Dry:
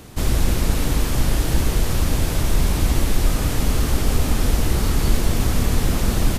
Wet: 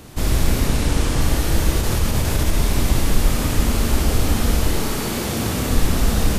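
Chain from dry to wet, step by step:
0:00.67–0:01.21: linear delta modulator 64 kbit/s, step −33.5 dBFS
0:01.81–0:02.54: compressor whose output falls as the input rises −18 dBFS
0:04.68–0:05.69: high-pass filter 190 Hz → 78 Hz 12 dB per octave
four-comb reverb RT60 1.2 s, combs from 27 ms, DRR 2 dB

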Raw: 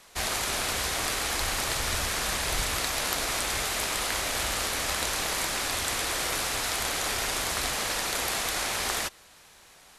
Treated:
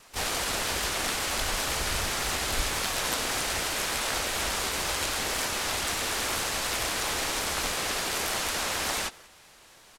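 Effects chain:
slap from a distant wall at 32 metres, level −22 dB
tape wow and flutter 15 cents
pitch-shifted copies added −7 semitones −3 dB, −4 semitones −2 dB, +3 semitones −4 dB
level −4 dB

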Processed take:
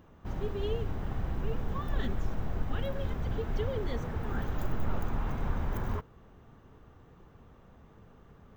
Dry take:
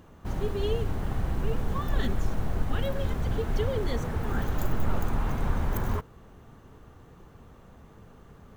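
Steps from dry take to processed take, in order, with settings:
parametric band 10,000 Hz −13.5 dB 0.87 octaves
notch filter 4,300 Hz, Q 20
level −4.5 dB

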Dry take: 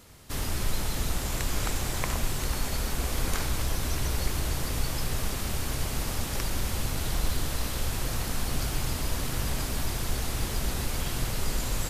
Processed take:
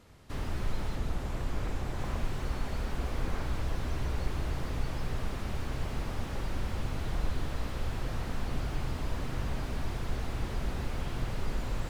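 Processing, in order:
low-pass filter 2,300 Hz 6 dB per octave, from 0:00.96 1,300 Hz, from 0:01.99 2,800 Hz
slew-rate limiting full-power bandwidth 23 Hz
level −3 dB

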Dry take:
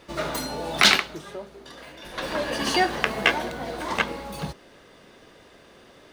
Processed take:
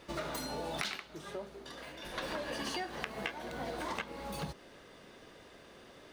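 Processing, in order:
downward compressor 10 to 1, threshold −31 dBFS, peak gain reduction 19.5 dB
level −4 dB

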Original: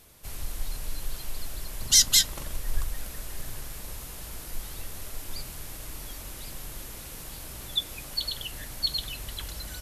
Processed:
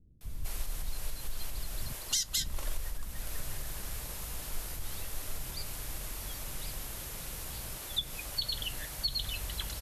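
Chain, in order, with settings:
downward compressor 6 to 1, threshold −29 dBFS, peak gain reduction 15 dB
multiband delay without the direct sound lows, highs 210 ms, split 290 Hz

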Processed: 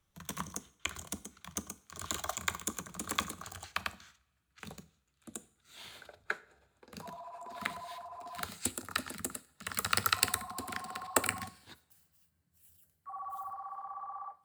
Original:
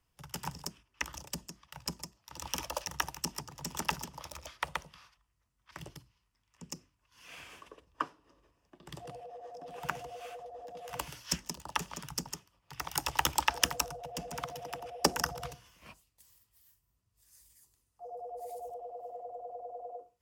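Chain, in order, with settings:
gliding playback speed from 117% → 163%
coupled-rooms reverb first 0.5 s, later 2.4 s, from −27 dB, DRR 15.5 dB

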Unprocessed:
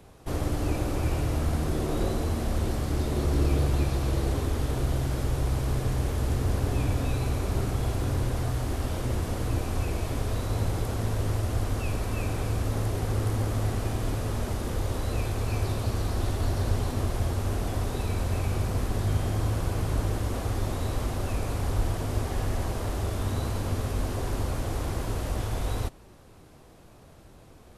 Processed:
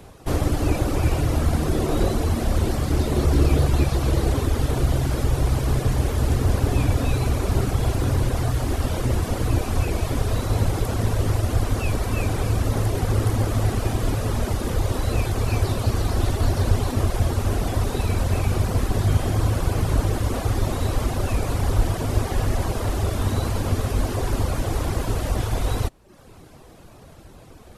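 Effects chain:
reverb reduction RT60 0.67 s
level +8 dB

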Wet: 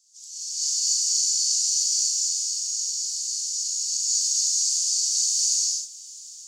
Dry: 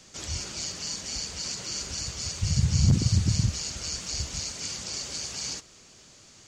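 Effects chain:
automatic gain control gain up to 16 dB
inverse Chebyshev high-pass filter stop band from 930 Hz, stop band 80 dB
reverb whose tail is shaped and stops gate 290 ms flat, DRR −7.5 dB
level −8.5 dB

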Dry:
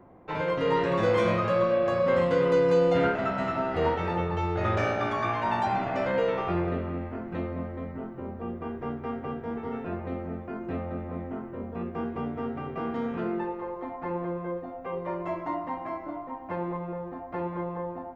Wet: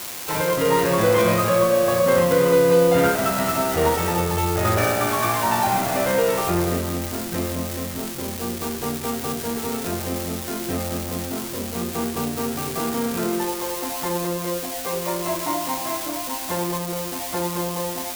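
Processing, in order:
spike at every zero crossing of −22.5 dBFS
level +6 dB

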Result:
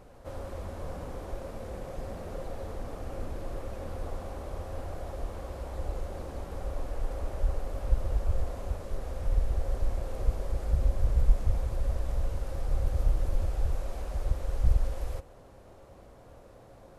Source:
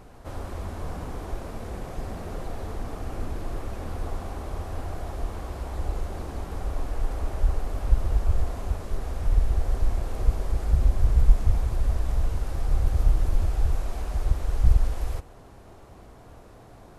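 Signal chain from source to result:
parametric band 540 Hz +10.5 dB 0.25 octaves
level −5.5 dB

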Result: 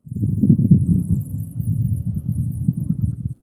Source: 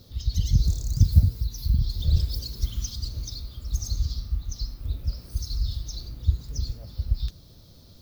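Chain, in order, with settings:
surface crackle 80 per second −36 dBFS
wrong playback speed 33 rpm record played at 78 rpm
on a send: loudspeakers that aren't time-aligned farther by 31 metres −6 dB, 74 metres −2 dB
on the sum: automatic gain control gain up to 5.5 dB
every bin expanded away from the loudest bin 1.5 to 1
level +2 dB

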